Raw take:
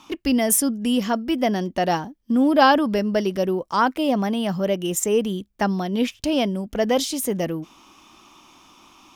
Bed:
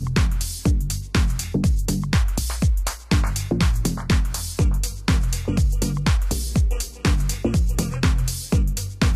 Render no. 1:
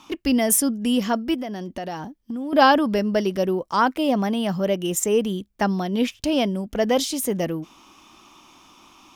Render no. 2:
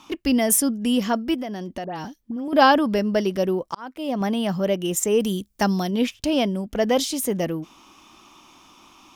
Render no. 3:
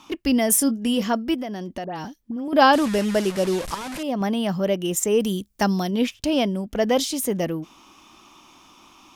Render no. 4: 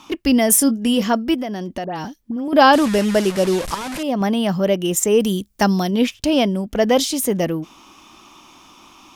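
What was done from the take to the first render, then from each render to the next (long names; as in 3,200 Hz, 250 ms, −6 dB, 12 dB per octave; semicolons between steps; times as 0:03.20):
0:01.34–0:02.53: downward compressor, threshold −27 dBFS
0:01.84–0:02.48: all-pass dispersion highs, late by 100 ms, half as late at 2,400 Hz; 0:03.20–0:04.21: volume swells 659 ms; 0:05.20–0:05.91: bass and treble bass +2 dB, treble +11 dB
0:00.58–0:01.04: double-tracking delay 22 ms −10 dB; 0:02.73–0:04.03: linear delta modulator 64 kbit/s, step −26 dBFS
level +4.5 dB; brickwall limiter −2 dBFS, peak gain reduction 2 dB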